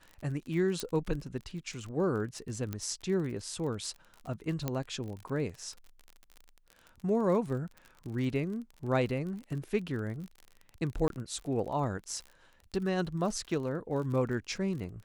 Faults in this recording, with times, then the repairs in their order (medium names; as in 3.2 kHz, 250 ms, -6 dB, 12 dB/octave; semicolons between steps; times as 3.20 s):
crackle 37 per s -39 dBFS
0.80 s: pop -18 dBFS
2.73 s: pop -21 dBFS
4.68 s: pop -17 dBFS
11.08–11.10 s: dropout 22 ms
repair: de-click; interpolate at 11.08 s, 22 ms